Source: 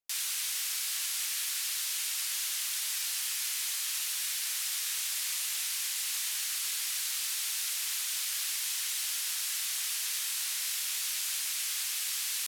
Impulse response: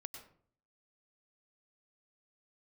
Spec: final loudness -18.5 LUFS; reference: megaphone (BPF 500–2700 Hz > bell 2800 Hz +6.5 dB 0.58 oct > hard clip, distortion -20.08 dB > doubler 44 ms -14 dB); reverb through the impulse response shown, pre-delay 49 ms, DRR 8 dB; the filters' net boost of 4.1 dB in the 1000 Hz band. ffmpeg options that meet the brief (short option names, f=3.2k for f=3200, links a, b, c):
-filter_complex "[0:a]equalizer=f=1k:t=o:g=5.5,asplit=2[a][b];[1:a]atrim=start_sample=2205,adelay=49[c];[b][c]afir=irnorm=-1:irlink=0,volume=-4dB[d];[a][d]amix=inputs=2:normalize=0,highpass=500,lowpass=2.7k,equalizer=f=2.8k:t=o:w=0.58:g=6.5,asoftclip=type=hard:threshold=-33.5dB,asplit=2[e][f];[f]adelay=44,volume=-14dB[g];[e][g]amix=inputs=2:normalize=0,volume=18.5dB"